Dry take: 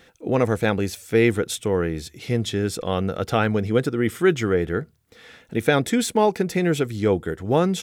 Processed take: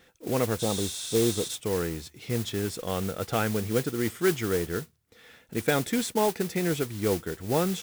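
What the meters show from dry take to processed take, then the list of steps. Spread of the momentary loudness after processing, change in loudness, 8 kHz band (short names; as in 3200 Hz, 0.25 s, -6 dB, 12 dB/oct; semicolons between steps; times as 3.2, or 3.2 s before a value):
6 LU, -6.0 dB, +0.5 dB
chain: spectral repair 0.62–1.46, 1300–11000 Hz after; modulation noise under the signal 12 dB; gain -6.5 dB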